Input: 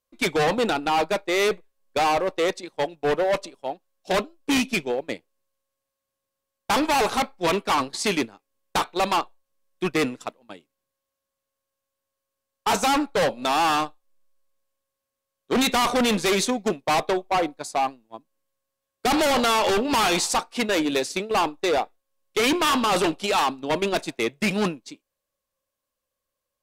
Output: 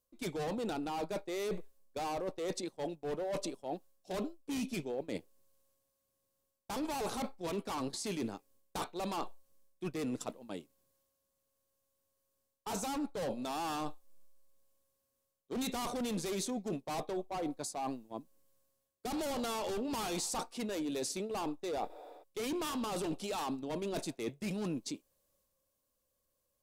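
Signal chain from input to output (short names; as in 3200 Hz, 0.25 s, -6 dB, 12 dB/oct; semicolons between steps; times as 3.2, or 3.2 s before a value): spectral repair 21.93–22.2, 290–11000 Hz before; transient shaper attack -4 dB, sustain +4 dB; in parallel at -3 dB: limiter -22.5 dBFS, peak gain reduction 7.5 dB; on the sum: bell 1900 Hz -10 dB 2.7 oct; reverse; compressor 6:1, threshold -36 dBFS, peak gain reduction 16.5 dB; reverse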